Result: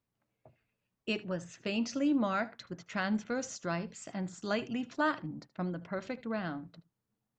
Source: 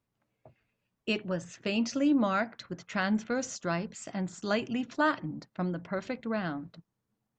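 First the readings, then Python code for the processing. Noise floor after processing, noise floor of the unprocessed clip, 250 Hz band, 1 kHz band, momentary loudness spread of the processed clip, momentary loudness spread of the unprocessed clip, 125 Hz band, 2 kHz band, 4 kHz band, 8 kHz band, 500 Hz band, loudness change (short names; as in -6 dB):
under -85 dBFS, -84 dBFS, -3.5 dB, -3.5 dB, 10 LU, 10 LU, -3.5 dB, -3.5 dB, -3.5 dB, -3.5 dB, -3.5 dB, -3.5 dB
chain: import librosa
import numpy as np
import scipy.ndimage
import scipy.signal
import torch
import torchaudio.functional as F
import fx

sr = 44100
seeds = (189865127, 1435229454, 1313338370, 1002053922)

y = x + 10.0 ** (-20.5 / 20.0) * np.pad(x, (int(76 * sr / 1000.0), 0))[:len(x)]
y = y * 10.0 ** (-3.5 / 20.0)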